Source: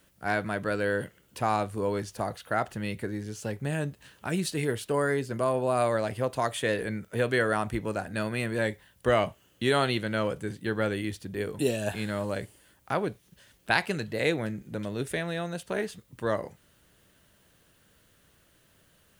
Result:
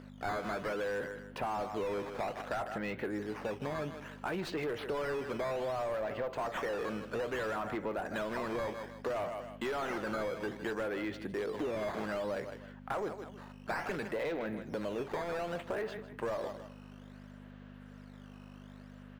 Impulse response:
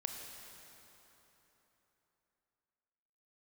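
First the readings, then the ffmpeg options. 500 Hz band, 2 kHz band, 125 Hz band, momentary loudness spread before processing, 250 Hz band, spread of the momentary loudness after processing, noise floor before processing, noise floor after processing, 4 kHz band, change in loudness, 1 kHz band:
−6.0 dB, −8.5 dB, −13.0 dB, 9 LU, −7.5 dB, 17 LU, −64 dBFS, −51 dBFS, −10.5 dB, −7.5 dB, −6.0 dB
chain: -filter_complex "[0:a]asoftclip=type=hard:threshold=-19.5dB,aeval=exprs='val(0)+0.01*(sin(2*PI*50*n/s)+sin(2*PI*2*50*n/s)/2+sin(2*PI*3*50*n/s)/3+sin(2*PI*4*50*n/s)/4+sin(2*PI*5*50*n/s)/5)':channel_layout=same,adynamicsmooth=sensitivity=6:basefreq=3800,lowshelf=frequency=160:gain=-11,acrusher=samples=9:mix=1:aa=0.000001:lfo=1:lforange=14.4:lforate=0.61,aecho=1:1:157|314:0.112|0.0303,asplit=2[link_01][link_02];[link_02]highpass=frequency=720:poles=1,volume=23dB,asoftclip=type=tanh:threshold=-16.5dB[link_03];[link_01][link_03]amix=inputs=2:normalize=0,lowpass=frequency=1100:poles=1,volume=-6dB,acompressor=threshold=-29dB:ratio=6,volume=-4dB"

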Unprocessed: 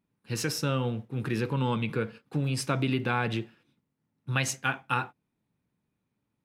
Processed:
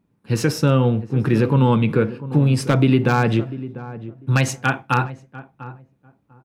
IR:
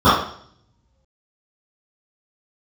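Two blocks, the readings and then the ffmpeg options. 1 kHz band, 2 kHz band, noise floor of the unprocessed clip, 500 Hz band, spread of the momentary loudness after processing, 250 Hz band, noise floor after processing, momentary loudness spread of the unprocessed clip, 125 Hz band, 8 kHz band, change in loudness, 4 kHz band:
+9.0 dB, +7.0 dB, −82 dBFS, +12.0 dB, 17 LU, +13.0 dB, −65 dBFS, 7 LU, +13.0 dB, +3.5 dB, +11.0 dB, +4.5 dB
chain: -filter_complex "[0:a]tiltshelf=frequency=1400:gain=5,aeval=exprs='0.211*(abs(mod(val(0)/0.211+3,4)-2)-1)':channel_layout=same,asplit=2[link_01][link_02];[link_02]adelay=696,lowpass=frequency=860:poles=1,volume=-14dB,asplit=2[link_03][link_04];[link_04]adelay=696,lowpass=frequency=860:poles=1,volume=0.21[link_05];[link_01][link_03][link_05]amix=inputs=3:normalize=0,volume=8dB"

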